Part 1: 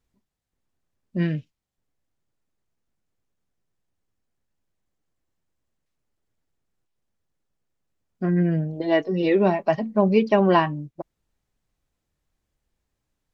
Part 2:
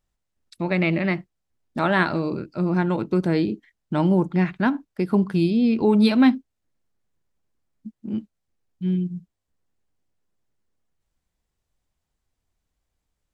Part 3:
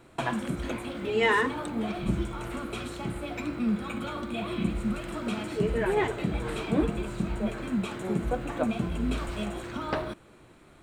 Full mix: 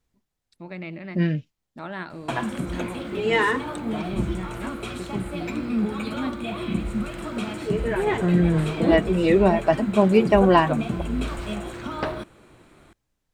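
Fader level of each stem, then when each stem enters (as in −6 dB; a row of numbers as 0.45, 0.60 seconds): +1.5, −14.0, +2.5 decibels; 0.00, 0.00, 2.10 seconds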